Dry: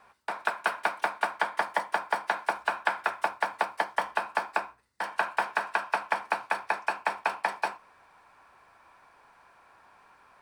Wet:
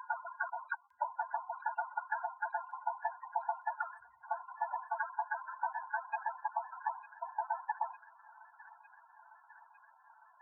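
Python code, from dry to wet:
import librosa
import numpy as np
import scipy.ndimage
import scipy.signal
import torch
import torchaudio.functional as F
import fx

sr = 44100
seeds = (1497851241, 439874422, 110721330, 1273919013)

y = fx.block_reorder(x, sr, ms=249.0, group=4)
y = fx.spec_topn(y, sr, count=8)
y = fx.echo_wet_highpass(y, sr, ms=904, feedback_pct=72, hz=1800.0, wet_db=-11.0)
y = y * librosa.db_to_amplitude(-3.5)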